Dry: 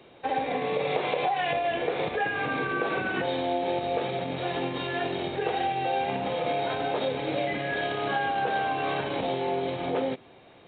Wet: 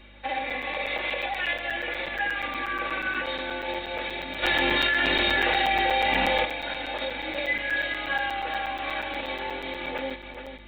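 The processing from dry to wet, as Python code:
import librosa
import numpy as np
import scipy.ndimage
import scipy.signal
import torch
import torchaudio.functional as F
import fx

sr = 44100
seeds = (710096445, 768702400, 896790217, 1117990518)

y = fx.rider(x, sr, range_db=10, speed_s=2.0)
y = fx.graphic_eq(y, sr, hz=(125, 250, 500, 1000, 2000), db=(-4, -8, -5, -4, 7))
y = fx.add_hum(y, sr, base_hz=50, snr_db=18)
y = fx.low_shelf(y, sr, hz=140.0, db=-5.0)
y = y + 0.95 * np.pad(y, (int(3.5 * sr / 1000.0), 0))[:len(y)]
y = fx.echo_feedback(y, sr, ms=420, feedback_pct=30, wet_db=-8.5)
y = fx.buffer_crackle(y, sr, first_s=0.5, period_s=0.12, block=256, kind='zero')
y = fx.env_flatten(y, sr, amount_pct=100, at=(4.42, 6.44), fade=0.02)
y = F.gain(torch.from_numpy(y), -2.0).numpy()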